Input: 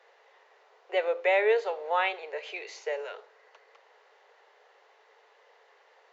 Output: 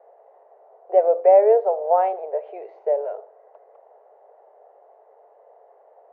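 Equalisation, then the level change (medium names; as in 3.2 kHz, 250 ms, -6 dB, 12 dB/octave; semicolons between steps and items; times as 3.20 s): resonant low-pass 670 Hz, resonance Q 4.9; distance through air 63 m; +3.0 dB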